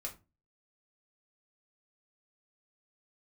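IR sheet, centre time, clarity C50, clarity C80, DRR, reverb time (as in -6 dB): 13 ms, 13.5 dB, 20.5 dB, -1.5 dB, 0.30 s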